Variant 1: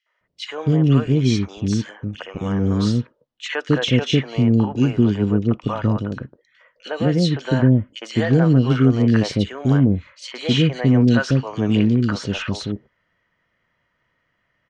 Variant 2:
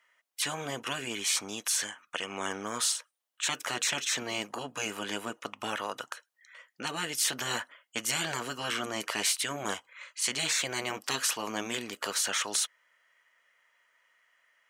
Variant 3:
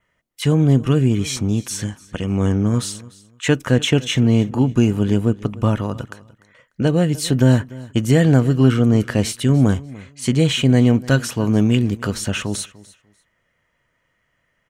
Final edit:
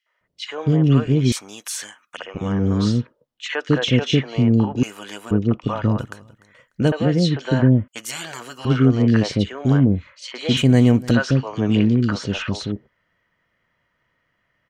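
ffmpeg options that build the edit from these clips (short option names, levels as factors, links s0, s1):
-filter_complex "[1:a]asplit=3[s0][s1][s2];[2:a]asplit=2[s3][s4];[0:a]asplit=6[s5][s6][s7][s8][s9][s10];[s5]atrim=end=1.322[s11];[s0]atrim=start=1.318:end=2.172[s12];[s6]atrim=start=2.168:end=4.832[s13];[s1]atrim=start=4.828:end=5.312[s14];[s7]atrim=start=5.308:end=5.992[s15];[s3]atrim=start=5.988:end=6.922[s16];[s8]atrim=start=6.918:end=7.882[s17];[s2]atrim=start=7.878:end=8.652[s18];[s9]atrim=start=8.648:end=10.572[s19];[s4]atrim=start=10.568:end=11.112[s20];[s10]atrim=start=11.108[s21];[s11][s12]acrossfade=d=0.004:c1=hsin:c2=hsin[s22];[s22][s13]acrossfade=d=0.004:c1=hsin:c2=hsin[s23];[s23][s14]acrossfade=d=0.004:c1=hsin:c2=hsin[s24];[s24][s15]acrossfade=d=0.004:c1=hsin:c2=hsin[s25];[s25][s16]acrossfade=d=0.004:c1=hsin:c2=hsin[s26];[s26][s17]acrossfade=d=0.004:c1=hsin:c2=hsin[s27];[s27][s18]acrossfade=d=0.004:c1=hsin:c2=hsin[s28];[s28][s19]acrossfade=d=0.004:c1=hsin:c2=hsin[s29];[s29][s20]acrossfade=d=0.004:c1=hsin:c2=hsin[s30];[s30][s21]acrossfade=d=0.004:c1=hsin:c2=hsin"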